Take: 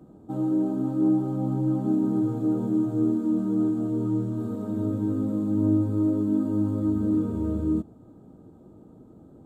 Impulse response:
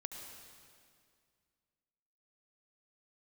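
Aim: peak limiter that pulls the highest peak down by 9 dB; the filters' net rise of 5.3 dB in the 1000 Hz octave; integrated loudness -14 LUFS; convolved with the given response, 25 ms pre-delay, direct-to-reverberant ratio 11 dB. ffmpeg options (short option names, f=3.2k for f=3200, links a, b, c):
-filter_complex "[0:a]equalizer=f=1k:t=o:g=7,alimiter=limit=-21dB:level=0:latency=1,asplit=2[a][b];[1:a]atrim=start_sample=2205,adelay=25[c];[b][c]afir=irnorm=-1:irlink=0,volume=-8.5dB[d];[a][d]amix=inputs=2:normalize=0,volume=14dB"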